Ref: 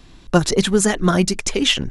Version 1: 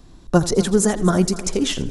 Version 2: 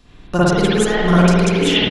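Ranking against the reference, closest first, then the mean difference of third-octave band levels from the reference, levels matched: 1, 2; 3.5, 8.0 decibels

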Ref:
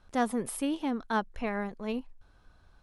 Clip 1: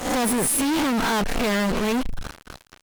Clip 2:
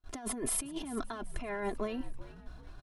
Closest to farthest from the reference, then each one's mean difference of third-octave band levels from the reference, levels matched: 2, 1; 9.0, 13.5 decibels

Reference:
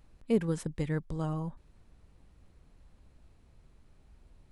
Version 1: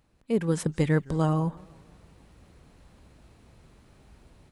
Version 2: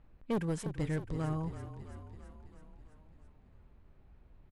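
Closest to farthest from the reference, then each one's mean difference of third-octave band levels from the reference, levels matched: 1, 2; 3.0, 5.0 decibels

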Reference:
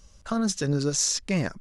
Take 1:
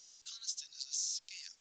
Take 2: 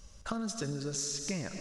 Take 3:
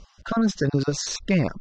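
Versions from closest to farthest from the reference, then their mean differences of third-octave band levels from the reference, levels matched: 3, 2, 1; 4.5, 7.0, 15.0 decibels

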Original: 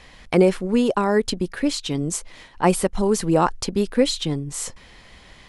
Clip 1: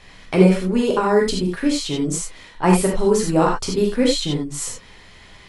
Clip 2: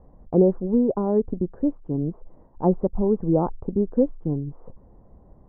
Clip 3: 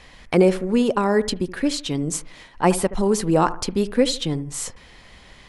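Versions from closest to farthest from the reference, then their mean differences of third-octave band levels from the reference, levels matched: 3, 1, 2; 1.5, 4.5, 10.0 decibels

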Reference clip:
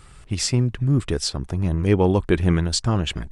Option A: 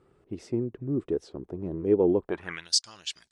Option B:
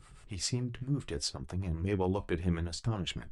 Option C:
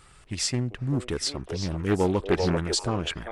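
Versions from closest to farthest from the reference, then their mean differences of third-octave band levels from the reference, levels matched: B, C, A; 2.5, 4.5, 8.5 decibels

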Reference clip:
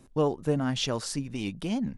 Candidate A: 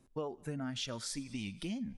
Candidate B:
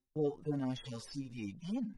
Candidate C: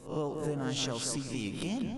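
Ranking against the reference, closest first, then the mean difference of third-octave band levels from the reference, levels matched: A, B, C; 3.5, 5.0, 8.0 decibels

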